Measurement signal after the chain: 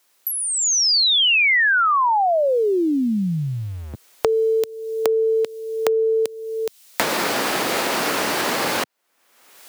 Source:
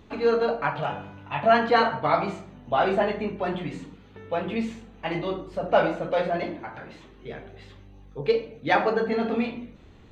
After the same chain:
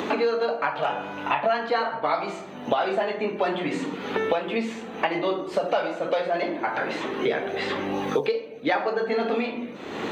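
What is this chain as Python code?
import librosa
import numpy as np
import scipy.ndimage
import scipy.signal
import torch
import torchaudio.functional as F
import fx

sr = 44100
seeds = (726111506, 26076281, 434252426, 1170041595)

y = fx.recorder_agc(x, sr, target_db=-13.5, rise_db_per_s=11.0, max_gain_db=30)
y = scipy.signal.sosfilt(scipy.signal.butter(2, 310.0, 'highpass', fs=sr, output='sos'), y)
y = fx.dynamic_eq(y, sr, hz=4500.0, q=2.7, threshold_db=-44.0, ratio=4.0, max_db=4)
y = fx.band_squash(y, sr, depth_pct=100)
y = y * 10.0 ** (-1.0 / 20.0)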